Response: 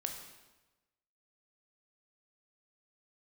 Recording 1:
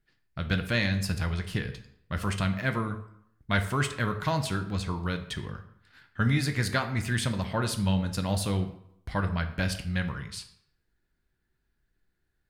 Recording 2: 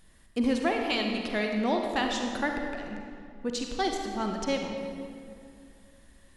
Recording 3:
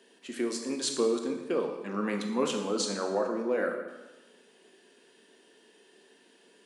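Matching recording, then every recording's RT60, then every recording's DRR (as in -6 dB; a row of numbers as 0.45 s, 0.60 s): 3; 0.75 s, 2.4 s, 1.1 s; 6.5 dB, 2.0 dB, 3.5 dB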